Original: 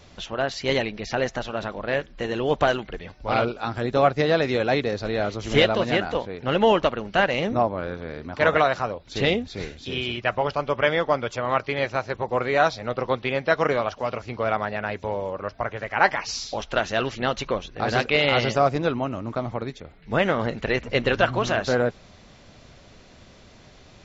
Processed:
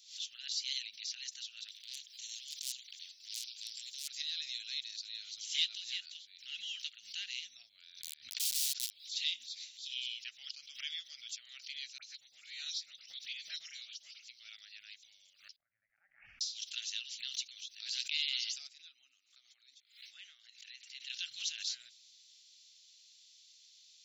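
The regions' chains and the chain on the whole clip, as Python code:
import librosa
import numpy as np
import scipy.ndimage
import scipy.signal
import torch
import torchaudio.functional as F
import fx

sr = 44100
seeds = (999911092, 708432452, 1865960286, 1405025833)

y = fx.chain(x, sr, fx.transient(attack_db=-11, sustain_db=-5),
    fx.clip_hard(threshold_db=-17.0),
    fx.spectral_comp(ratio=4.0), at=(1.68, 4.08))
y = fx.chain(y, sr, fx.lowpass(hz=1200.0, slope=6),
    fx.overflow_wrap(gain_db=24.0), at=(7.99, 8.91))
y = fx.chain(y, sr, fx.peak_eq(hz=96.0, db=-7.5, octaves=0.85),
    fx.dispersion(late='highs', ms=51.0, hz=2100.0), at=(11.98, 14.28))
y = fx.chain(y, sr, fx.gaussian_blur(sigma=8.1),
    fx.auto_swell(attack_ms=114.0), at=(15.56, 16.41))
y = fx.chain(y, sr, fx.cheby_ripple_highpass(hz=260.0, ripple_db=9),
    fx.high_shelf(hz=2900.0, db=-5.5),
    fx.pre_swell(db_per_s=74.0), at=(18.67, 21.1))
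y = scipy.signal.sosfilt(scipy.signal.cheby2(4, 60, 1100.0, 'highpass', fs=sr, output='sos'), y)
y = fx.pre_swell(y, sr, db_per_s=130.0)
y = y * 10.0 ** (-1.0 / 20.0)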